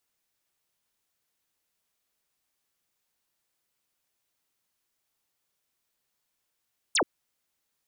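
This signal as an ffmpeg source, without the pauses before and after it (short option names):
-f lavfi -i "aevalsrc='0.0891*clip(t/0.002,0,1)*clip((0.08-t)/0.002,0,1)*sin(2*PI*10000*0.08/log(250/10000)*(exp(log(250/10000)*t/0.08)-1))':d=0.08:s=44100"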